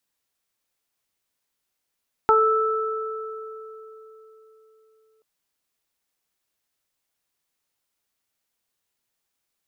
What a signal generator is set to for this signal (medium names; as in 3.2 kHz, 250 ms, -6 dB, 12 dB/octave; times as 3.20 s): additive tone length 2.93 s, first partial 439 Hz, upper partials 3.5/2.5 dB, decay 4.00 s, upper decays 0.22/2.88 s, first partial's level -17.5 dB